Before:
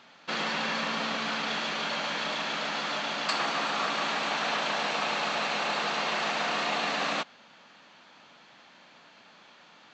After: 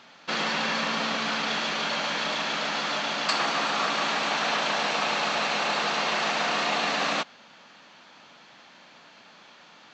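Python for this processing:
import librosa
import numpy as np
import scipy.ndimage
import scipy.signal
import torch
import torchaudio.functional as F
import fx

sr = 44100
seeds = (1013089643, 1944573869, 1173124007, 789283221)

y = fx.peak_eq(x, sr, hz=5600.0, db=2.5, octaves=0.59)
y = y * 10.0 ** (3.0 / 20.0)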